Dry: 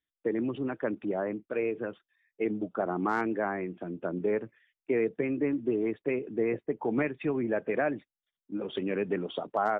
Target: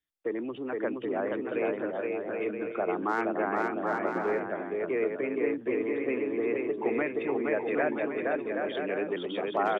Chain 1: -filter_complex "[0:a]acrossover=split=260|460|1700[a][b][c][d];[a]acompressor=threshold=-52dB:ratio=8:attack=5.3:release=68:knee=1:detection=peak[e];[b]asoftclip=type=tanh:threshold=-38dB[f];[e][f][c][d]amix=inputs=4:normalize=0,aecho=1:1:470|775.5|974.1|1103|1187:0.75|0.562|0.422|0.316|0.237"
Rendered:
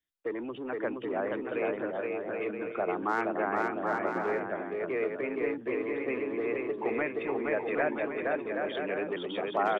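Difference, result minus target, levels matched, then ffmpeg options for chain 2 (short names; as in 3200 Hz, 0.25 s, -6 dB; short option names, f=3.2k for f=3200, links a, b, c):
soft clip: distortion +11 dB
-filter_complex "[0:a]acrossover=split=260|460|1700[a][b][c][d];[a]acompressor=threshold=-52dB:ratio=8:attack=5.3:release=68:knee=1:detection=peak[e];[b]asoftclip=type=tanh:threshold=-27.5dB[f];[e][f][c][d]amix=inputs=4:normalize=0,aecho=1:1:470|775.5|974.1|1103|1187:0.75|0.562|0.422|0.316|0.237"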